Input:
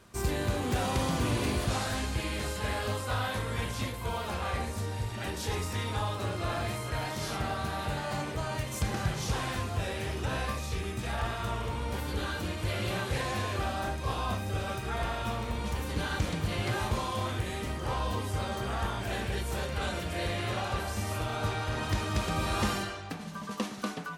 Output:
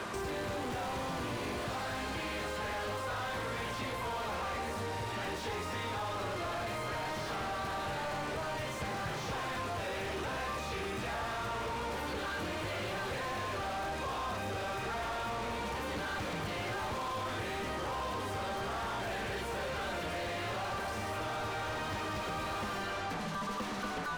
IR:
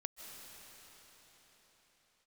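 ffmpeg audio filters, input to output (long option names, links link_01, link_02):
-filter_complex "[0:a]asplit=2[link_01][link_02];[link_02]highpass=frequency=720:poles=1,volume=33dB,asoftclip=type=tanh:threshold=-19.5dB[link_03];[link_01][link_03]amix=inputs=2:normalize=0,lowpass=frequency=1400:poles=1,volume=-6dB,acrossover=split=100|4400[link_04][link_05][link_06];[link_04]acompressor=threshold=-49dB:ratio=4[link_07];[link_05]acompressor=threshold=-37dB:ratio=4[link_08];[link_06]acompressor=threshold=-52dB:ratio=4[link_09];[link_07][link_08][link_09]amix=inputs=3:normalize=0"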